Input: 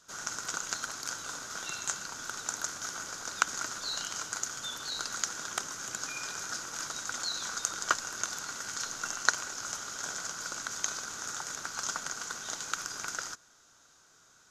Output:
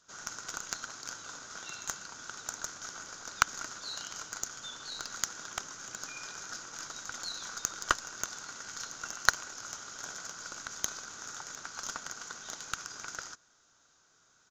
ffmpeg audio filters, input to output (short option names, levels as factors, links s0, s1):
-af "aresample=16000,aresample=44100,aeval=exprs='0.596*(cos(1*acos(clip(val(0)/0.596,-1,1)))-cos(1*PI/2))+0.0168*(cos(4*acos(clip(val(0)/0.596,-1,1)))-cos(4*PI/2))+0.0473*(cos(7*acos(clip(val(0)/0.596,-1,1)))-cos(7*PI/2))+0.00944*(cos(8*acos(clip(val(0)/0.596,-1,1)))-cos(8*PI/2))':c=same,volume=1.26"